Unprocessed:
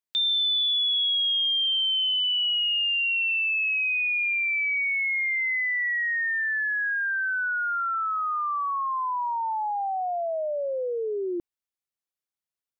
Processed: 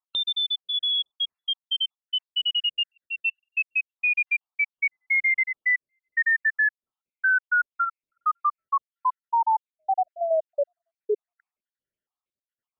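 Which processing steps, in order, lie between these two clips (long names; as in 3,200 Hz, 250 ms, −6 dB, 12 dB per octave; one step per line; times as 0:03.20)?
time-frequency cells dropped at random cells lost 72%
low-pass filter 2,300 Hz 12 dB per octave
level +8 dB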